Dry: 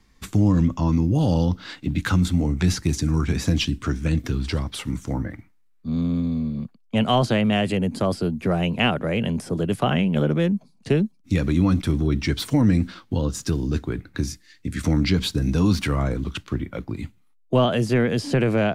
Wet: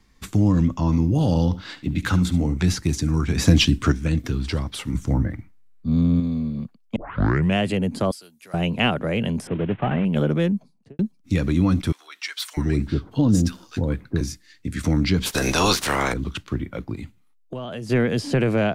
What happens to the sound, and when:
0.71–2.57 s: delay 72 ms -15.5 dB
3.38–3.92 s: gain +6 dB
4.94–6.20 s: bass shelf 200 Hz +9 dB
6.96 s: tape start 0.61 s
8.11–8.54 s: differentiator
9.47–10.05 s: CVSD coder 16 kbps
10.56–10.99 s: studio fade out
11.92–14.21 s: bands offset in time highs, lows 650 ms, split 960 Hz
15.25–16.12 s: spectral peaks clipped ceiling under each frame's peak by 28 dB
16.95–17.90 s: compression, threshold -29 dBFS

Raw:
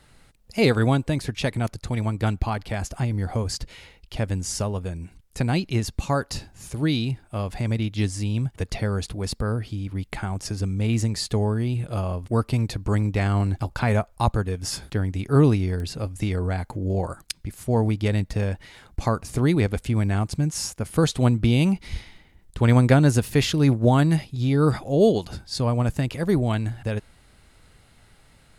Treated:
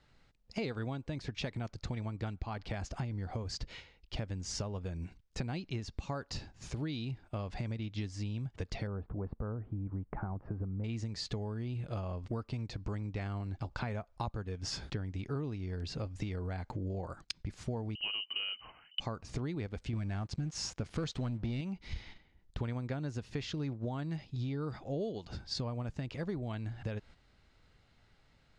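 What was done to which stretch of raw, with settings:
8.87–10.84 s: low-pass 1.3 kHz 24 dB/octave
17.95–19.00 s: frequency inversion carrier 3 kHz
19.93–21.61 s: waveshaping leveller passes 2
whole clip: gate -43 dBFS, range -9 dB; low-pass 6.2 kHz 24 dB/octave; compression 8:1, threshold -32 dBFS; trim -2.5 dB

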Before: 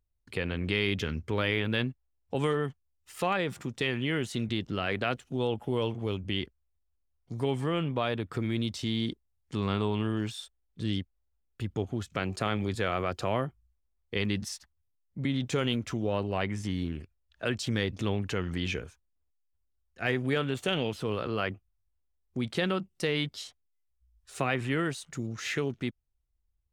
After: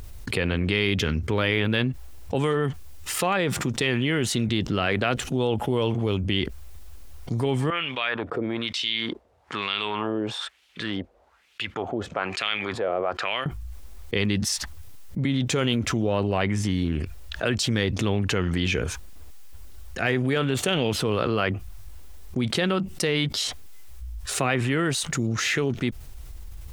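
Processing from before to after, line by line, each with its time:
7.70–13.46 s: wah-wah 1.1 Hz 510–3000 Hz, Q 2.2
whole clip: level flattener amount 70%; trim +3 dB

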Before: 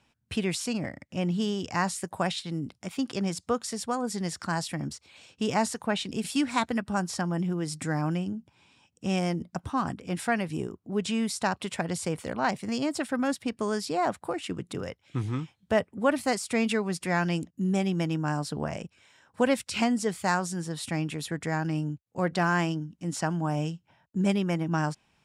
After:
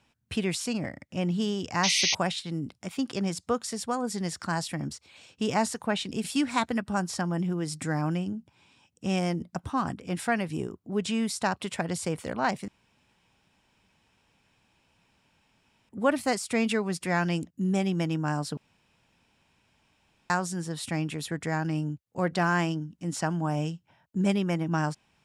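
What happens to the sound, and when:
1.83–2.15 s: painted sound noise 1.9–6.5 kHz -25 dBFS
12.68–15.89 s: room tone
18.57–20.30 s: room tone

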